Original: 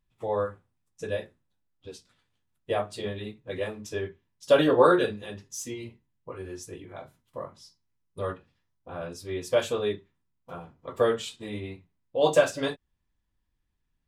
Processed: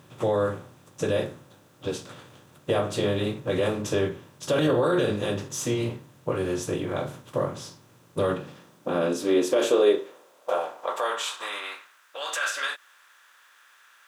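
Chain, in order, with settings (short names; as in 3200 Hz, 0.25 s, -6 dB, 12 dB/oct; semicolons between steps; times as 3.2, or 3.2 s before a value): per-bin compression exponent 0.6; limiter -16.5 dBFS, peak gain reduction 11 dB; requantised 12-bit, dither triangular; high-pass sweep 120 Hz -> 1500 Hz, 8.15–11.84; dynamic EQ 1000 Hz, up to -4 dB, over -35 dBFS, Q 0.77; gain +2.5 dB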